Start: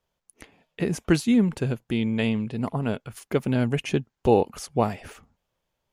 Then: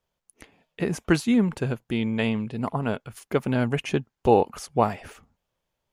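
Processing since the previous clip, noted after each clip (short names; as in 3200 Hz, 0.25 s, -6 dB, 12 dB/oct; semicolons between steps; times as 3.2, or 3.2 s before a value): dynamic EQ 1100 Hz, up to +6 dB, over -38 dBFS, Q 0.74; gain -1.5 dB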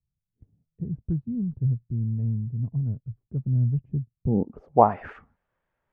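low-pass sweep 120 Hz -> 1700 Hz, 4.19–5.05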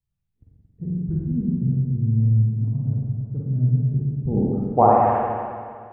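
spring tank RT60 2.1 s, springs 45/56 ms, chirp 40 ms, DRR -5 dB; gain -1.5 dB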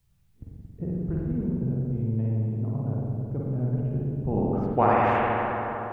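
spectral compressor 2:1; gain -5.5 dB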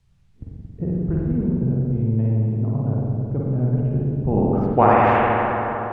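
air absorption 68 m; gain +6.5 dB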